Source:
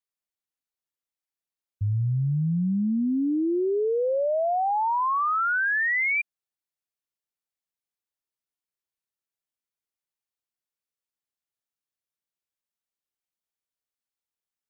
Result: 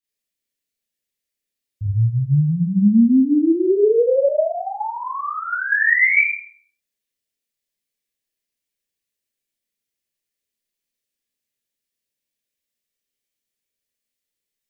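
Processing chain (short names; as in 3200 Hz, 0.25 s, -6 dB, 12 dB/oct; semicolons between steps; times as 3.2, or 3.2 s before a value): band shelf 1000 Hz -11.5 dB 1.3 oct; Schroeder reverb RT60 0.51 s, combs from 27 ms, DRR -8.5 dB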